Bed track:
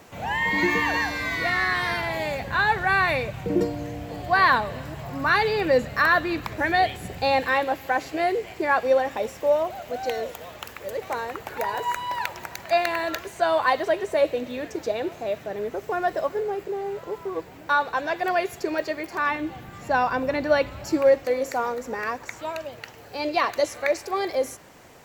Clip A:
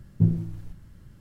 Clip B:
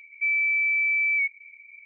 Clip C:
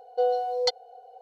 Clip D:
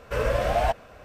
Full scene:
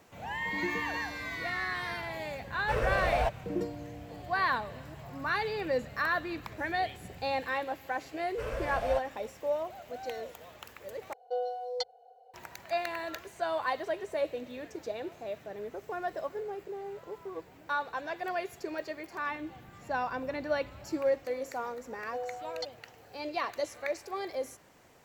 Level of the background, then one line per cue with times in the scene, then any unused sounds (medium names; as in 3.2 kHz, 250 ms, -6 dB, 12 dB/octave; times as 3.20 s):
bed track -10.5 dB
2.57 s: add D -5.5 dB + decimation joined by straight lines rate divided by 2×
8.27 s: add D -11.5 dB
11.13 s: replace with C -9 dB + hum notches 50/100/150 Hz
21.95 s: add C -13.5 dB
not used: A, B